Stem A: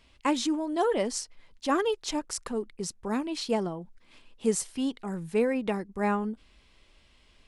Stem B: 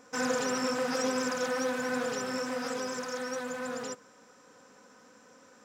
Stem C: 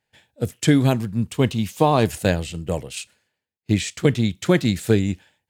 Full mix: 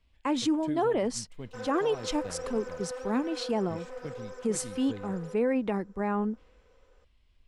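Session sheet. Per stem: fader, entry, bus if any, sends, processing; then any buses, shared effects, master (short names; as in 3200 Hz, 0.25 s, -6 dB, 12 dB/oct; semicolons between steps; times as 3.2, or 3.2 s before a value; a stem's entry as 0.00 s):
+2.5 dB, 0.00 s, no send, three-band expander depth 40%
-2.0 dB, 1.40 s, no send, ladder high-pass 370 Hz, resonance 55%
-16.5 dB, 0.00 s, no send, auto duck -7 dB, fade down 0.25 s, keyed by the first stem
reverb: off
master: high shelf 3700 Hz -9.5 dB; limiter -19.5 dBFS, peak gain reduction 9.5 dB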